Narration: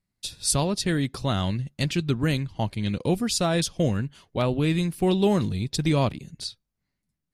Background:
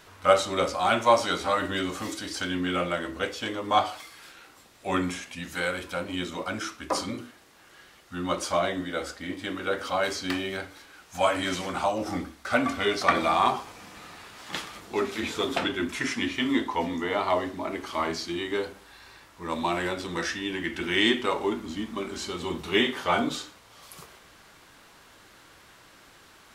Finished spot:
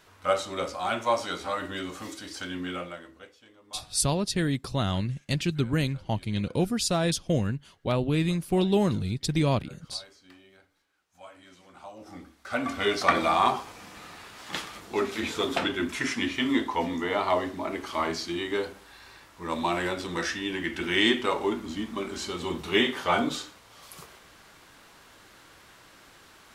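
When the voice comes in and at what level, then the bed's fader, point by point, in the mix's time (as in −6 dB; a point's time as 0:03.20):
3.50 s, −2.0 dB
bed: 0:02.70 −5.5 dB
0:03.44 −24.5 dB
0:11.55 −24.5 dB
0:12.86 0 dB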